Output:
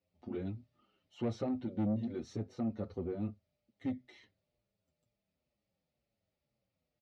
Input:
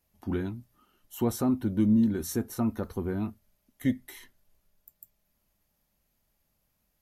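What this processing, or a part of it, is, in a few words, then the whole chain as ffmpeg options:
barber-pole flanger into a guitar amplifier: -filter_complex "[0:a]asplit=2[link_01][link_02];[link_02]adelay=7.1,afreqshift=-2.1[link_03];[link_01][link_03]amix=inputs=2:normalize=1,asoftclip=type=tanh:threshold=-26dB,highpass=86,equalizer=frequency=110:width_type=q:width=4:gain=5,equalizer=frequency=540:width_type=q:width=4:gain=7,equalizer=frequency=1000:width_type=q:width=4:gain=-9,equalizer=frequency=1600:width_type=q:width=4:gain=-10,equalizer=frequency=3200:width_type=q:width=4:gain=-4,lowpass=frequency=4500:width=0.5412,lowpass=frequency=4500:width=1.3066,asettb=1/sr,asplit=3[link_04][link_05][link_06];[link_04]atrim=end=0.474[link_07];[link_05]atrim=start=0.47:end=2.2,asetpts=PTS-STARTPTS,afade=type=in:duration=0.004:curve=qsin,afade=type=out:start_time=1.726:duration=0.004:curve=qsin,equalizer=frequency=2500:width=0.59:gain=4[link_08];[link_06]atrim=start=2.196[link_09];[link_07][link_08]acrossfade=duration=0.004:curve1=hsin:curve2=qsin[link_10];[link_10][link_09]acrossfade=duration=0.004:curve1=qsin:curve2=hsin,volume=-3.5dB"

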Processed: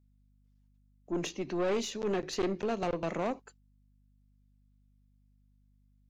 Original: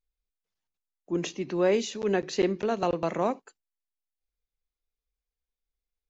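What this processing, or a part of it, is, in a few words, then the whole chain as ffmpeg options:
valve amplifier with mains hum: -af "aeval=exprs='(tanh(17.8*val(0)+0.35)-tanh(0.35))/17.8':channel_layout=same,aeval=exprs='val(0)+0.000631*(sin(2*PI*50*n/s)+sin(2*PI*2*50*n/s)/2+sin(2*PI*3*50*n/s)/3+sin(2*PI*4*50*n/s)/4+sin(2*PI*5*50*n/s)/5)':channel_layout=same,volume=-1dB"

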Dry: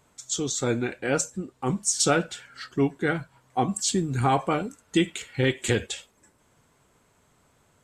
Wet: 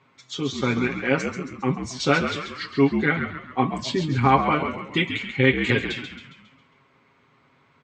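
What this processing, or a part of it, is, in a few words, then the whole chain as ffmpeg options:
frequency-shifting delay pedal into a guitar cabinet: -filter_complex "[0:a]asettb=1/sr,asplit=3[link_01][link_02][link_03];[link_01]atrim=end=2.274[link_04];[link_02]atrim=start=2.27:end=3.05,asetpts=PTS-STARTPTS,afade=type=in:duration=0.004:curve=qsin,afade=type=out:start_time=0.776:duration=0.004:curve=qsin,bass=frequency=250:gain=-1,treble=frequency=4000:gain=10[link_05];[link_03]atrim=start=3.046[link_06];[link_04][link_05]acrossfade=duration=0.004:curve1=hsin:curve2=qsin[link_07];[link_07][link_06]acrossfade=duration=0.004:curve1=qsin:curve2=hsin,aecho=1:1:7.4:0.79,asplit=7[link_08][link_09][link_10][link_11][link_12][link_13][link_14];[link_09]adelay=136,afreqshift=-64,volume=-8dB[link_15];[link_10]adelay=272,afreqshift=-128,volume=-14.4dB[link_16];[link_11]adelay=408,afreqshift=-192,volume=-20.8dB[link_17];[link_12]adelay=544,afreqshift=-256,volume=-27.1dB[link_18];[link_13]adelay=680,afreqshift=-320,volume=-33.5dB[link_19];[link_14]adelay=816,afreqshift=-384,volume=-39.9dB[link_20];[link_08][link_15][link_16][link_17][link_18][link_19][link_20]amix=inputs=7:normalize=0,highpass=110,equalizer=frequency=220:width_type=q:width=4:gain=4,equalizer=frequency=680:width_type=q:width=4:gain=-4,equalizer=frequency=1100:width_type=q:width=4:gain=6,equalizer=frequency=2200:width_type=q:width=4:gain=9,lowpass=frequency=4400:width=0.5412,lowpass=frequency=4400:width=1.3066"

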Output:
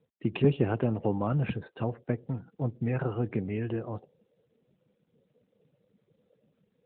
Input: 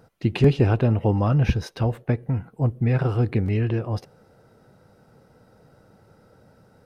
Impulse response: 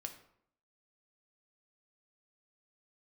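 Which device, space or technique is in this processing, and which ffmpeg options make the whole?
mobile call with aggressive noise cancelling: -filter_complex "[0:a]asettb=1/sr,asplit=3[link_01][link_02][link_03];[link_01]atrim=end=2.314[link_04];[link_02]atrim=start=2.31:end=3.5,asetpts=PTS-STARTPTS,afade=type=in:duration=0.004:curve=qsin,afade=type=out:start_time=1.186:duration=0.004:curve=qsin,agate=range=-10dB:threshold=-44dB:ratio=16:detection=peak[link_05];[link_03]atrim=start=3.496[link_06];[link_04][link_05]acrossfade=duration=0.004:curve1=hsin:curve2=qsin[link_07];[link_07][link_06]acrossfade=duration=0.004:curve1=qsin:curve2=hsin,highpass=150,afftdn=noise_reduction=27:noise_floor=-45,volume=-5dB" -ar 8000 -c:a libopencore_amrnb -b:a 12200

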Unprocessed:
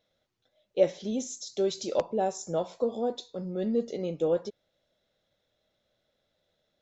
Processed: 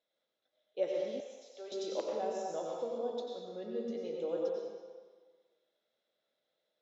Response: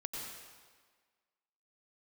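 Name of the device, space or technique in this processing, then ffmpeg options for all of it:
supermarket ceiling speaker: -filter_complex "[0:a]highpass=330,lowpass=5800[link_01];[1:a]atrim=start_sample=2205[link_02];[link_01][link_02]afir=irnorm=-1:irlink=0,asettb=1/sr,asplit=3[link_03][link_04][link_05];[link_03]atrim=end=1.204[link_06];[link_04]atrim=start=1.2:end=1.72,asetpts=PTS-STARTPTS,afade=type=in:duration=0.004:curve=qsin,afade=type=out:start_time=0.516:duration=0.004:curve=qsin,acrossover=split=510 3200:gain=0.0631 1 0.224[link_07][link_08][link_09];[link_07][link_08][link_09]amix=inputs=3:normalize=0[link_10];[link_05]atrim=start=1.716[link_11];[link_06][link_10]acrossfade=duration=0.004:curve1=hsin:curve2=qsin[link_12];[link_12][link_11]acrossfade=duration=0.004:curve1=qsin:curve2=hsin,volume=-6.5dB"

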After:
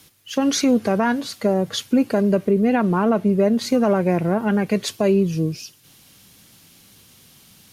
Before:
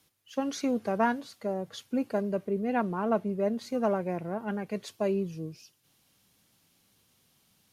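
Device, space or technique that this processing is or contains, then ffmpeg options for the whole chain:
mastering chain: -af "equalizer=frequency=760:width_type=o:width=1.8:gain=-4,acompressor=threshold=-33dB:ratio=2,alimiter=level_in=25.5dB:limit=-1dB:release=50:level=0:latency=1,volume=-8dB"

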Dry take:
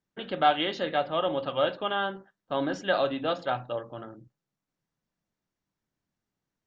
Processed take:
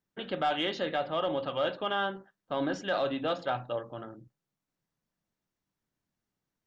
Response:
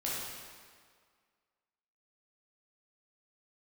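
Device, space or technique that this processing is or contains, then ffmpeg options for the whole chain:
soft clipper into limiter: -af "asoftclip=type=tanh:threshold=-12.5dB,alimiter=limit=-19.5dB:level=0:latency=1:release=18,volume=-1dB"

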